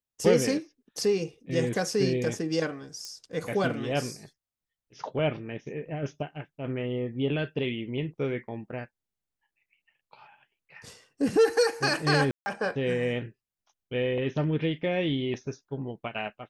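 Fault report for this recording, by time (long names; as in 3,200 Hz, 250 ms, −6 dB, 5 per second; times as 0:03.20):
0:03.05: click −24 dBFS
0:12.31–0:12.46: drop-out 150 ms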